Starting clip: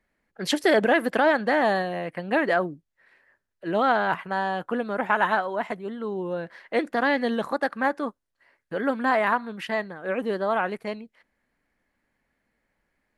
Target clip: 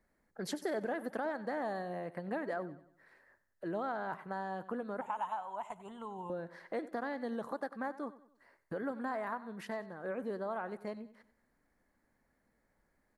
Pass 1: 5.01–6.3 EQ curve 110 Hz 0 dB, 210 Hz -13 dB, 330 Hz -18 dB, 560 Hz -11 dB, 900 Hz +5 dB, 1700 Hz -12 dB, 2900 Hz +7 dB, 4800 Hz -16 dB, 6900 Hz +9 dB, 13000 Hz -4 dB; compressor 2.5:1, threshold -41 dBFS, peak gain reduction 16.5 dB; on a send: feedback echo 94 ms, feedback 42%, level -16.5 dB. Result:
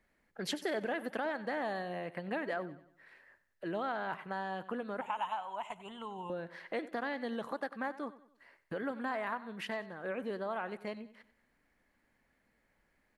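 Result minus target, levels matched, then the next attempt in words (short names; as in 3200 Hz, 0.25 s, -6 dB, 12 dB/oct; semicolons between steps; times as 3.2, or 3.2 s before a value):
2000 Hz band +3.0 dB
5.01–6.3 EQ curve 110 Hz 0 dB, 210 Hz -13 dB, 330 Hz -18 dB, 560 Hz -11 dB, 900 Hz +5 dB, 1700 Hz -12 dB, 2900 Hz +7 dB, 4800 Hz -16 dB, 6900 Hz +9 dB, 13000 Hz -4 dB; compressor 2.5:1, threshold -41 dBFS, peak gain reduction 16.5 dB; bell 2800 Hz -12 dB 1 oct; on a send: feedback echo 94 ms, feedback 42%, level -16.5 dB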